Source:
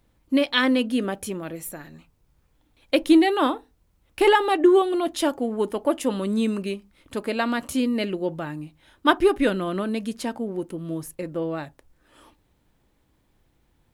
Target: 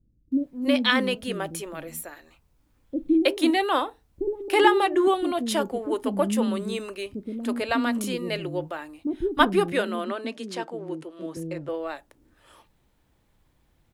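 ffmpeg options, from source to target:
ffmpeg -i in.wav -filter_complex "[0:a]asettb=1/sr,asplit=3[link_01][link_02][link_03];[link_01]atrim=end=9.724[link_04];[link_02]atrim=start=9.72:end=11.37,asetpts=PTS-STARTPTS,afade=type=in:duration=0.004:curve=qsin,afade=type=out:start_time=1.646:duration=0.004:curve=qsin,acrossover=split=200 7700:gain=0.0631 1 0.2[link_05][link_06][link_07];[link_05][link_06][link_07]amix=inputs=3:normalize=0[link_08];[link_03]atrim=start=11.366[link_09];[link_04][link_08]acrossfade=duration=0.004:curve1=hsin:curve2=qsin[link_10];[link_10][link_09]acrossfade=duration=0.004:curve1=qsin:curve2=hsin,acrossover=split=340[link_11][link_12];[link_12]adelay=320[link_13];[link_11][link_13]amix=inputs=2:normalize=0" out.wav

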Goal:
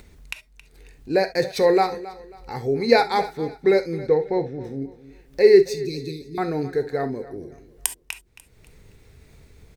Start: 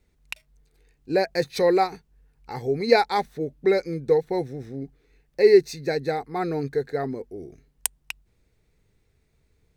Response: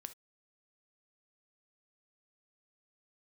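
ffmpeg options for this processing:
-filter_complex "[0:a]asplit=3[link_01][link_02][link_03];[link_01]afade=type=out:start_time=4.06:duration=0.02[link_04];[link_02]lowpass=3500,afade=type=in:start_time=4.06:duration=0.02,afade=type=out:start_time=4.63:duration=0.02[link_05];[link_03]afade=type=in:start_time=4.63:duration=0.02[link_06];[link_04][link_05][link_06]amix=inputs=3:normalize=0,acompressor=mode=upward:threshold=-38dB:ratio=2.5,asettb=1/sr,asplit=3[link_07][link_08][link_09];[link_07]atrim=end=5.704[link_10];[link_08]atrim=start=5.7:end=6.38,asetpts=PTS-STARTPTS,afade=type=in:duration=0.004:curve=qsin,afade=type=out:start_time=0.676:duration=0.004:curve=qsin,asuperstop=centerf=1000:order=20:qfactor=0.51[link_11];[link_09]atrim=start=6.376[link_12];[link_10][link_11]acrossfade=duration=0.004:curve1=hsin:curve2=qsin[link_13];[link_13][link_12]acrossfade=duration=0.004:curve1=qsin:curve2=hsin,aecho=1:1:271|542|813:0.141|0.0452|0.0145[link_14];[1:a]atrim=start_sample=2205[link_15];[link_14][link_15]afir=irnorm=-1:irlink=0,volume=7dB"

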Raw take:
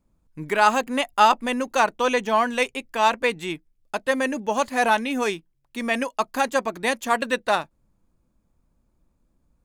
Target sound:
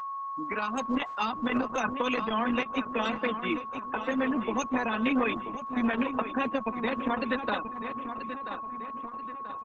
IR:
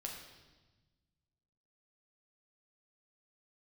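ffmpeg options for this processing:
-filter_complex "[0:a]asettb=1/sr,asplit=3[link_01][link_02][link_03];[link_01]atrim=end=5.164[link_04];[link_02]atrim=start=5.16:end=7.17,asetpts=PTS-STARTPTS,afade=type=in:duration=0.004:curve=qsin,afade=type=out:start_time=2.006:duration=0.004:curve=qsin,lowpass=5200[link_05];[link_03]atrim=start=7.166[link_06];[link_04][link_05]acrossfade=duration=0.004:curve1=hsin:curve2=qsin[link_07];[link_07][link_06]acrossfade=duration=0.004:curve1=qsin:curve2=hsin,afftfilt=real='re*gte(hypot(re,im),0.0562)':imag='im*gte(hypot(re,im),0.0562)':win_size=1024:overlap=0.75,lowshelf=frequency=180:width_type=q:width=3:gain=-7,aecho=1:1:4:0.61,acrossover=split=280|1600[link_08][link_09][link_10];[link_08]acompressor=threshold=-32dB:ratio=4[link_11];[link_09]acompressor=threshold=-28dB:ratio=4[link_12];[link_10]acompressor=threshold=-28dB:ratio=4[link_13];[link_11][link_12][link_13]amix=inputs=3:normalize=0,alimiter=limit=-18dB:level=0:latency=1:release=95,dynaudnorm=framelen=230:gausssize=7:maxgain=5.5dB,aeval=exprs='val(0)+0.0447*sin(2*PI*1100*n/s)':channel_layout=same,asplit=2[link_14][link_15];[link_15]adelay=984,lowpass=frequency=3600:poles=1,volume=-9dB,asplit=2[link_16][link_17];[link_17]adelay=984,lowpass=frequency=3600:poles=1,volume=0.52,asplit=2[link_18][link_19];[link_19]adelay=984,lowpass=frequency=3600:poles=1,volume=0.52,asplit=2[link_20][link_21];[link_21]adelay=984,lowpass=frequency=3600:poles=1,volume=0.52,asplit=2[link_22][link_23];[link_23]adelay=984,lowpass=frequency=3600:poles=1,volume=0.52,asplit=2[link_24][link_25];[link_25]adelay=984,lowpass=frequency=3600:poles=1,volume=0.52[link_26];[link_14][link_16][link_18][link_20][link_22][link_24][link_26]amix=inputs=7:normalize=0,volume=-6dB" -ar 48000 -c:a libopus -b:a 10k

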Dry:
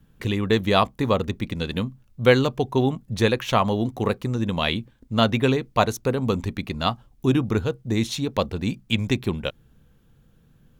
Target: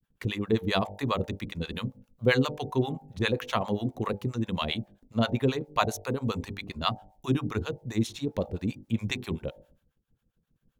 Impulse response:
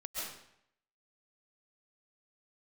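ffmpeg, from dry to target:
-filter_complex "[0:a]bandreject=frequency=49.96:width_type=h:width=4,bandreject=frequency=99.92:width_type=h:width=4,bandreject=frequency=149.88:width_type=h:width=4,bandreject=frequency=199.84:width_type=h:width=4,bandreject=frequency=249.8:width_type=h:width=4,bandreject=frequency=299.76:width_type=h:width=4,bandreject=frequency=349.72:width_type=h:width=4,bandreject=frequency=399.68:width_type=h:width=4,bandreject=frequency=449.64:width_type=h:width=4,bandreject=frequency=499.6:width_type=h:width=4,bandreject=frequency=549.56:width_type=h:width=4,bandreject=frequency=599.52:width_type=h:width=4,bandreject=frequency=649.48:width_type=h:width=4,bandreject=frequency=699.44:width_type=h:width=4,bandreject=frequency=749.4:width_type=h:width=4,bandreject=frequency=799.36:width_type=h:width=4,bandreject=frequency=849.32:width_type=h:width=4,bandreject=frequency=899.28:width_type=h:width=4,agate=range=-33dB:threshold=-48dB:ratio=3:detection=peak,acrossover=split=650[link_01][link_02];[link_01]aeval=exprs='val(0)*(1-1/2+1/2*cos(2*PI*7.5*n/s))':channel_layout=same[link_03];[link_02]aeval=exprs='val(0)*(1-1/2-1/2*cos(2*PI*7.5*n/s))':channel_layout=same[link_04];[link_03][link_04]amix=inputs=2:normalize=0,volume=-1.5dB"

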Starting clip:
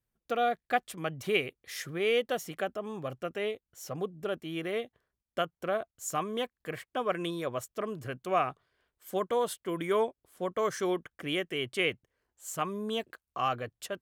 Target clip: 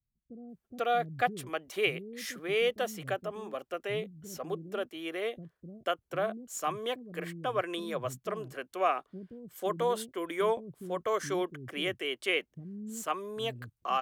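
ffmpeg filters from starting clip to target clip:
ffmpeg -i in.wav -filter_complex "[0:a]acrossover=split=260[link_01][link_02];[link_02]adelay=490[link_03];[link_01][link_03]amix=inputs=2:normalize=0,acrossover=split=620|6200[link_04][link_05][link_06];[link_06]asoftclip=type=tanh:threshold=-38dB[link_07];[link_04][link_05][link_07]amix=inputs=3:normalize=0" out.wav

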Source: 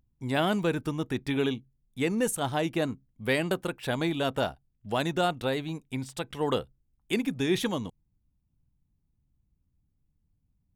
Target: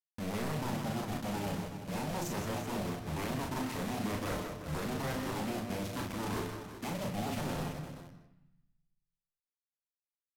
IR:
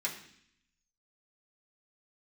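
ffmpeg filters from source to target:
-filter_complex "[0:a]lowpass=frequency=3800:poles=1,equalizer=frequency=340:width=0.84:gain=11.5,bandreject=frequency=117.1:width_type=h:width=4,bandreject=frequency=234.2:width_type=h:width=4,bandreject=frequency=351.3:width_type=h:width=4,bandreject=frequency=468.4:width_type=h:width=4,bandreject=frequency=585.5:width_type=h:width=4,bandreject=frequency=702.6:width_type=h:width=4,bandreject=frequency=819.7:width_type=h:width=4,bandreject=frequency=936.8:width_type=h:width=4,bandreject=frequency=1053.9:width_type=h:width=4,bandreject=frequency=1171:width_type=h:width=4,bandreject=frequency=1288.1:width_type=h:width=4,bandreject=frequency=1405.2:width_type=h:width=4,bandreject=frequency=1522.3:width_type=h:width=4,bandreject=frequency=1639.4:width_type=h:width=4,alimiter=limit=-17dB:level=0:latency=1:release=373,areverse,acompressor=threshold=-36dB:ratio=8,areverse,aeval=exprs='0.0112*(abs(mod(val(0)/0.0112+3,4)-2)-1)':channel_layout=same,acrusher=bits=7:mix=0:aa=0.000001,atempo=1.4,aecho=1:1:29.15|125.4|282.8:0.631|0.355|0.282,asplit=2[link_01][link_02];[1:a]atrim=start_sample=2205,lowshelf=frequency=400:gain=11.5,adelay=113[link_03];[link_02][link_03]afir=irnorm=-1:irlink=0,volume=-15.5dB[link_04];[link_01][link_04]amix=inputs=2:normalize=0,asetrate=32667,aresample=44100,volume=6.5dB"

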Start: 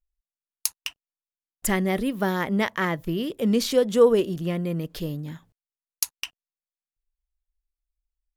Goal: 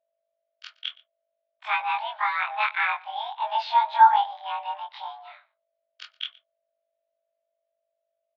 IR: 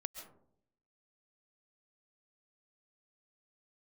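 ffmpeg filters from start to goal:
-filter_complex "[0:a]afftfilt=real='re':imag='-im':win_size=2048:overlap=0.75,aeval=exprs='val(0)+0.00178*(sin(2*PI*50*n/s)+sin(2*PI*2*50*n/s)/2+sin(2*PI*3*50*n/s)/3+sin(2*PI*4*50*n/s)/4+sin(2*PI*5*50*n/s)/5)':channel_layout=same,afreqshift=16,asplit=2[link_01][link_02];[link_02]aecho=0:1:118:0.0668[link_03];[link_01][link_03]amix=inputs=2:normalize=0,highpass=frequency=420:width_type=q:width=0.5412,highpass=frequency=420:width_type=q:width=1.307,lowpass=frequency=3300:width_type=q:width=0.5176,lowpass=frequency=3300:width_type=q:width=0.7071,lowpass=frequency=3300:width_type=q:width=1.932,afreqshift=400,volume=6.5dB"

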